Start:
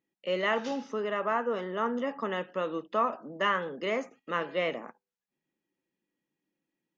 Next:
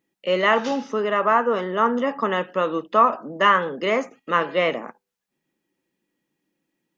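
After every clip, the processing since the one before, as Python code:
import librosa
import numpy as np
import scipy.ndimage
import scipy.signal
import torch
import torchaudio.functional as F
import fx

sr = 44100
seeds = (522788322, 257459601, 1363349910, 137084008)

y = fx.dynamic_eq(x, sr, hz=1100.0, q=1.9, threshold_db=-40.0, ratio=4.0, max_db=4)
y = y * 10.0 ** (8.5 / 20.0)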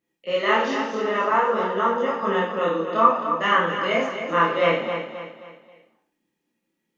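y = fx.chorus_voices(x, sr, voices=2, hz=0.56, base_ms=27, depth_ms=3.8, mix_pct=55)
y = fx.echo_feedback(y, sr, ms=266, feedback_pct=40, wet_db=-8.5)
y = fx.rev_plate(y, sr, seeds[0], rt60_s=0.57, hf_ratio=1.0, predelay_ms=0, drr_db=-1.0)
y = y * 10.0 ** (-1.0 / 20.0)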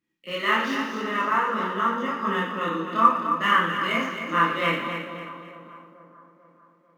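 y = scipy.ndimage.median_filter(x, 5, mode='constant')
y = fx.band_shelf(y, sr, hz=590.0, db=-10.0, octaves=1.3)
y = fx.echo_split(y, sr, split_hz=1300.0, low_ms=444, high_ms=118, feedback_pct=52, wet_db=-13.5)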